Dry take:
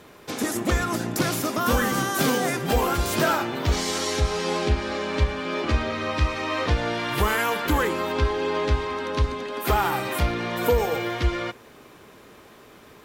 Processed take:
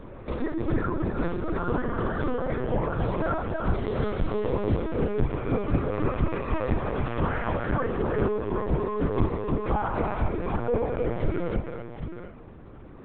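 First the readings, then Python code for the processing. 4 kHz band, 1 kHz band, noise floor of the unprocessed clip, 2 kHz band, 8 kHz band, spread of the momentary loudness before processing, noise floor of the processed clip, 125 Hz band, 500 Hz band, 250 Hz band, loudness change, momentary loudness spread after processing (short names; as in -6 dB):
-19.0 dB, -5.5 dB, -49 dBFS, -9.5 dB, under -40 dB, 4 LU, -44 dBFS, -1.0 dB, -1.5 dB, -1.0 dB, -4.0 dB, 6 LU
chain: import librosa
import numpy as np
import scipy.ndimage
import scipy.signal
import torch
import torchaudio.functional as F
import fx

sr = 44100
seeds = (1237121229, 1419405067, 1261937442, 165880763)

p1 = fx.envelope_sharpen(x, sr, power=1.5)
p2 = fx.lowpass(p1, sr, hz=1300.0, slope=6)
p3 = fx.rider(p2, sr, range_db=10, speed_s=0.5)
p4 = fx.add_hum(p3, sr, base_hz=50, snr_db=15)
p5 = p4 + fx.echo_multitap(p4, sr, ms=(48, 57, 123, 313, 771, 823), db=(-10.0, -18.5, -11.0, -4.0, -9.5, -15.0), dry=0)
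p6 = fx.lpc_vocoder(p5, sr, seeds[0], excitation='pitch_kept', order=10)
y = p6 * 10.0 ** (-4.0 / 20.0)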